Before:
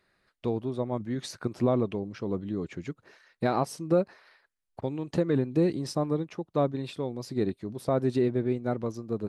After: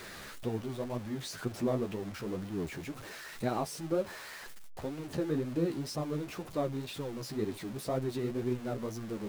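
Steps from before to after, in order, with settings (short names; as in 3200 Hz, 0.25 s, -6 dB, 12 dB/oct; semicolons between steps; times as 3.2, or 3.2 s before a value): zero-crossing step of -32.5 dBFS; flange 2 Hz, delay 7.2 ms, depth 8.5 ms, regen +24%; gain -4.5 dB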